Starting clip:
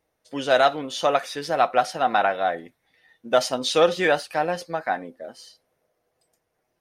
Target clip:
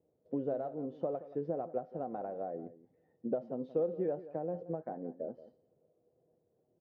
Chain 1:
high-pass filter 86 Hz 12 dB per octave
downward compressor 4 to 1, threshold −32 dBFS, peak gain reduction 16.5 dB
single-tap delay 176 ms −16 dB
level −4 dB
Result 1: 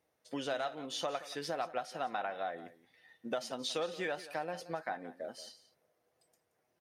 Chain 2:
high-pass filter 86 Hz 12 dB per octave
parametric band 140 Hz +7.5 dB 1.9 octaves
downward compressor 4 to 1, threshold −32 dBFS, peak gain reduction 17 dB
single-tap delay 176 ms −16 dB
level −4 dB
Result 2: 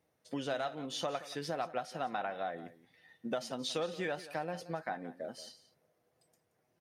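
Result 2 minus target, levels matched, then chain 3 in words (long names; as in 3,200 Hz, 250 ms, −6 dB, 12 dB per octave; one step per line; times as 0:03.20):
500 Hz band −2.5 dB
high-pass filter 86 Hz 12 dB per octave
parametric band 140 Hz +7.5 dB 1.9 octaves
downward compressor 4 to 1, threshold −32 dBFS, peak gain reduction 17 dB
low-pass with resonance 470 Hz, resonance Q 1.9
single-tap delay 176 ms −16 dB
level −4 dB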